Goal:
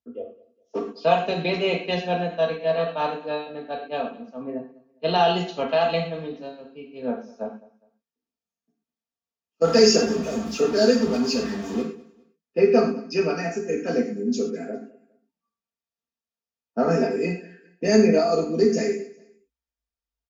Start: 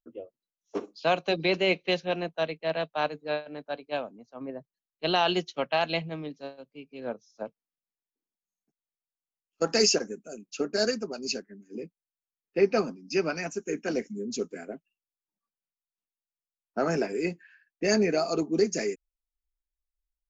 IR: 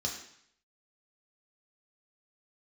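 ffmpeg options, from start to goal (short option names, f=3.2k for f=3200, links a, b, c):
-filter_complex "[0:a]asettb=1/sr,asplit=3[a][b][c];[a]atrim=end=9.644[d];[b]atrim=start=9.64:end=11.82,asetpts=PTS-STARTPTS,afade=t=in:d=0.004:c=qsin,afade=t=out:st=2.176:d=0.004:c=qsin,aeval=exprs='val(0)+0.5*0.0299*sgn(val(0))':c=same[e];[c]atrim=start=11.816[f];[d][e]acrossfade=d=0.004:c1=hsin:c2=qsin[g];[g][f]acrossfade=d=0.004:c1=qsin:c2=hsin,lowpass=f=2.5k:p=1,aecho=1:1:4.4:0.61,aecho=1:1:204|408:0.0891|0.0267[h];[1:a]atrim=start_sample=2205,atrim=end_sample=6174[i];[h][i]afir=irnorm=-1:irlink=0"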